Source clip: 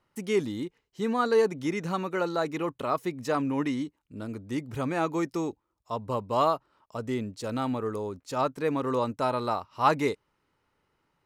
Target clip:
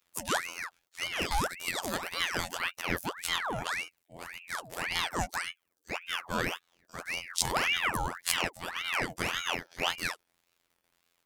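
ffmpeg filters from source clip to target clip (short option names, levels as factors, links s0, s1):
-filter_complex "[0:a]asettb=1/sr,asplit=3[s0][s1][s2];[s0]atrim=end=1.214[s3];[s1]atrim=start=1.21:end=2.56,asetpts=PTS-STARTPTS,afade=t=in:d=0.004:c=qsin,afade=t=out:st=1.346:d=0.004:c=qsin,highshelf=f=9700:g=9[s4];[s2]atrim=start=2.556[s5];[s3][s4]acrossfade=d=0.004:c1=hsin:c2=qsin[s6];[s6][s5]acrossfade=d=0.004:c1=qsin:c2=hsin,asplit=3[s7][s8][s9];[s7]afade=t=out:st=7.29:d=0.02[s10];[s8]acontrast=83,afade=t=in:st=7.29:d=0.02,afade=t=out:st=8.47:d=0.02[s11];[s9]afade=t=in:st=8.47:d=0.02[s12];[s10][s11][s12]amix=inputs=3:normalize=0,alimiter=limit=0.158:level=0:latency=1:release=447,crystalizer=i=5.5:c=0,afftfilt=real='hypot(re,im)*cos(PI*b)':imag='0':win_size=2048:overlap=0.75,aeval=exprs='val(0)*sin(2*PI*1500*n/s+1500*0.75/1.8*sin(2*PI*1.8*n/s))':c=same"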